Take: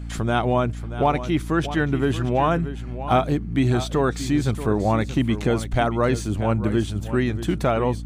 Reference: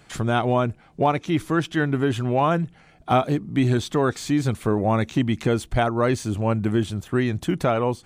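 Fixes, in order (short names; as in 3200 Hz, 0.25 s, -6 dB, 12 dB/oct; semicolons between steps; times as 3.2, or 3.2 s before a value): de-hum 57.4 Hz, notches 5; inverse comb 0.632 s -12.5 dB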